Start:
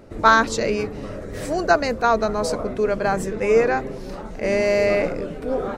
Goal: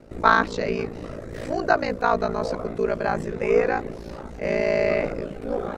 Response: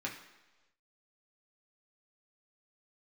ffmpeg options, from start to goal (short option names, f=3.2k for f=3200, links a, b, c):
-filter_complex "[0:a]acrossover=split=4700[a][b];[b]acompressor=threshold=-52dB:ratio=4:attack=1:release=60[c];[a][c]amix=inputs=2:normalize=0,aeval=exprs='val(0)*sin(2*PI*28*n/s)':c=same"